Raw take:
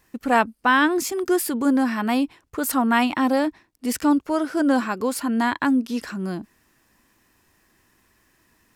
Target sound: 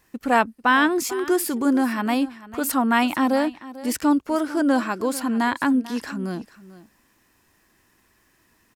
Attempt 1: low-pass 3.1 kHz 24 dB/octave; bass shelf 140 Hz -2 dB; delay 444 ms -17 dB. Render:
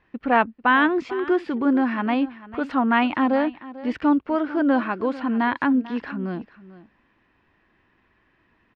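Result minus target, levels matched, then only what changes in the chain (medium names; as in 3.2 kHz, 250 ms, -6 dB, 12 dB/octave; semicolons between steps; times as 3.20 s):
4 kHz band -4.5 dB
remove: low-pass 3.1 kHz 24 dB/octave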